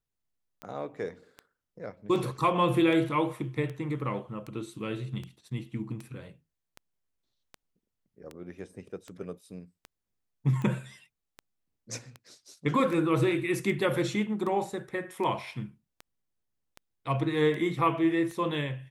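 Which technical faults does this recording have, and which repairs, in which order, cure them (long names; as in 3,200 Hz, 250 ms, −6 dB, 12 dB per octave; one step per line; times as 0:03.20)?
scratch tick 78 rpm −26 dBFS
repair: click removal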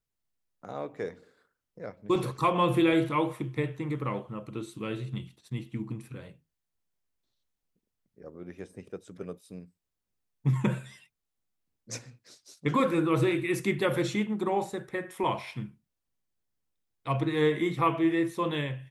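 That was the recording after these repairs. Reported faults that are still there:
none of them is left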